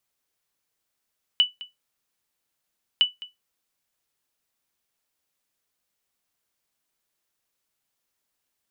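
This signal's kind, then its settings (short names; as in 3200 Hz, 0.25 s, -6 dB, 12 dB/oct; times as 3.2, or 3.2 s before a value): sonar ping 2970 Hz, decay 0.17 s, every 1.61 s, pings 2, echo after 0.21 s, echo -19 dB -10 dBFS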